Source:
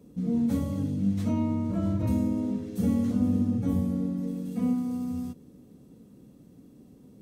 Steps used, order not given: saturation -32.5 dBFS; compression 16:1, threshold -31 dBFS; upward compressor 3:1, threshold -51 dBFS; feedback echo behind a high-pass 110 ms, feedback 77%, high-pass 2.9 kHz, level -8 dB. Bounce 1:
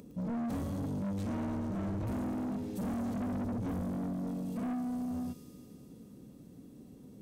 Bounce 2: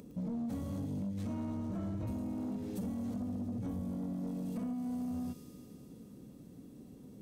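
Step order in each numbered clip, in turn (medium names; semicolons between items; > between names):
upward compressor > feedback echo behind a high-pass > saturation > compression; upward compressor > feedback echo behind a high-pass > compression > saturation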